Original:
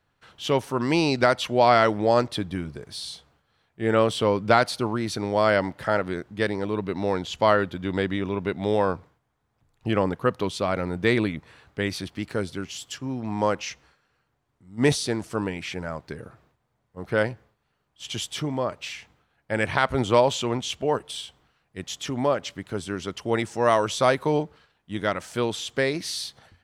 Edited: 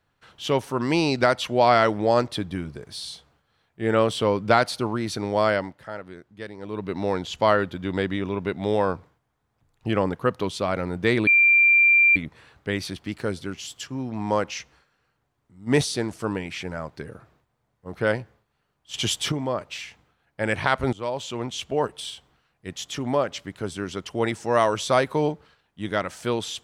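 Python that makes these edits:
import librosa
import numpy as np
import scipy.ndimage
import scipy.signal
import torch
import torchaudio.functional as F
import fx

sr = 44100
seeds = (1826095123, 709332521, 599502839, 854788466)

y = fx.edit(x, sr, fx.fade_down_up(start_s=5.43, length_s=1.51, db=-12.0, fade_s=0.37),
    fx.insert_tone(at_s=11.27, length_s=0.89, hz=2370.0, db=-13.0),
    fx.clip_gain(start_s=18.05, length_s=0.38, db=6.0),
    fx.fade_in_from(start_s=20.04, length_s=0.81, floor_db=-17.0), tone=tone)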